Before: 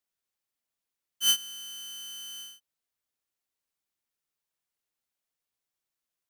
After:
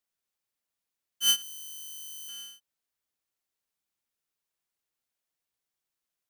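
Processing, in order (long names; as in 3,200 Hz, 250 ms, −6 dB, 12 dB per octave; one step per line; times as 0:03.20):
0:01.42–0:02.29: first difference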